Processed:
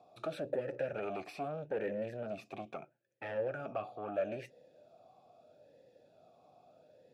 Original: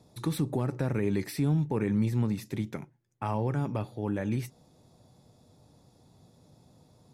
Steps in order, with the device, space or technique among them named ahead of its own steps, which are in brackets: talk box (valve stage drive 30 dB, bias 0.35; talking filter a-e 0.77 Hz); trim +12.5 dB

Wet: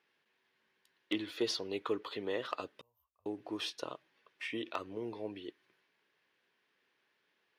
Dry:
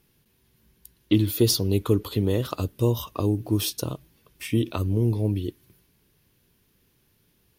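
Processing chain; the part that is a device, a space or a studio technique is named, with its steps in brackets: 2.81–3.26 s: inverse Chebyshev band-stop 130–8700 Hz, stop band 40 dB; megaphone (band-pass 600–3100 Hz; peaking EQ 1.8 kHz +5 dB 0.53 oct; hard clipper -19 dBFS, distortion -25 dB); trim -3.5 dB

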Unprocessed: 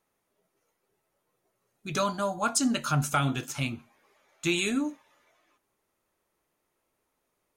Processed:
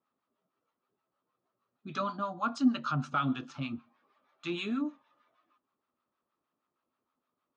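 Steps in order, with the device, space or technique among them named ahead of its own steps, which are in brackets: guitar amplifier with harmonic tremolo (harmonic tremolo 6.4 Hz, depth 70%, crossover 730 Hz; saturation -16.5 dBFS, distortion -24 dB; cabinet simulation 98–4300 Hz, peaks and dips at 250 Hz +9 dB, 440 Hz -3 dB, 1.2 kHz +10 dB, 2.1 kHz -6 dB); trim -4.5 dB

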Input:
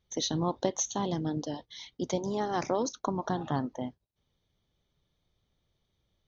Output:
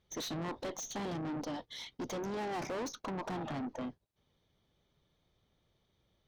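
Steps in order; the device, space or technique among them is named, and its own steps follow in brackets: tube preamp driven hard (valve stage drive 40 dB, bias 0.3; bass shelf 120 Hz -7 dB; treble shelf 3.7 kHz -7 dB); trim +5.5 dB

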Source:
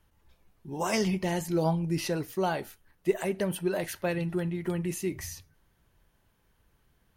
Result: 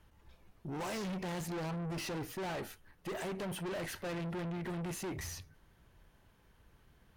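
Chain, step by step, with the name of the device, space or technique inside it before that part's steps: tube preamp driven hard (valve stage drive 42 dB, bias 0.35; treble shelf 6.7 kHz -7.5 dB); trim +5 dB

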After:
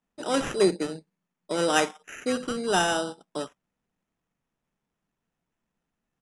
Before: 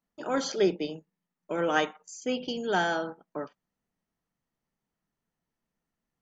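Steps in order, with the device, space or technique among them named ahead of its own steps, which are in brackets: crushed at another speed (playback speed 2×; sample-and-hold 5×; playback speed 0.5×); trim +3 dB

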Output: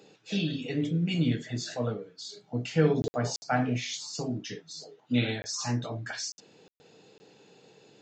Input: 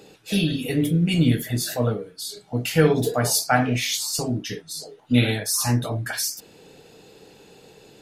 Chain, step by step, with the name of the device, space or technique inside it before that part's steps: call with lost packets (high-pass 110 Hz 24 dB/octave; resampled via 16 kHz; lost packets bursts); 2.40–4.31 s: tilt shelf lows +3 dB, about 640 Hz; trim -7.5 dB

